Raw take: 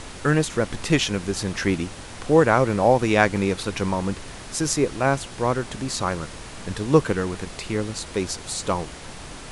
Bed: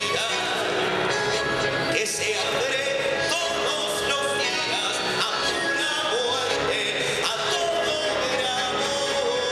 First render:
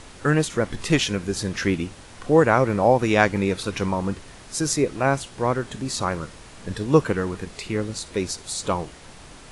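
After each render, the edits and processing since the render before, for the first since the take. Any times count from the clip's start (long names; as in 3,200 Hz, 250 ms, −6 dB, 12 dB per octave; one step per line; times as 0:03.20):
noise reduction from a noise print 6 dB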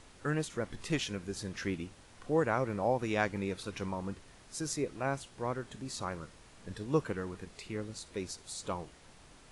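level −13 dB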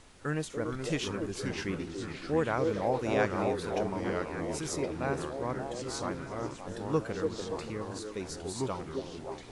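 echo through a band-pass that steps 288 ms, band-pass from 420 Hz, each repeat 0.7 octaves, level −1.5 dB
delay with pitch and tempo change per echo 355 ms, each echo −3 semitones, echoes 3, each echo −6 dB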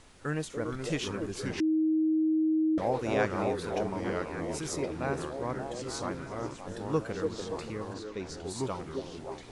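0:01.60–0:02.78: beep over 315 Hz −23 dBFS
0:07.93–0:08.49: low-pass filter 4,400 Hz → 7,500 Hz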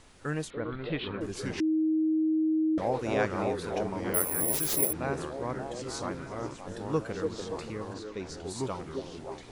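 0:00.50–0:01.21: elliptic low-pass filter 4,000 Hz
0:04.14–0:04.93: bad sample-rate conversion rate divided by 4×, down none, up zero stuff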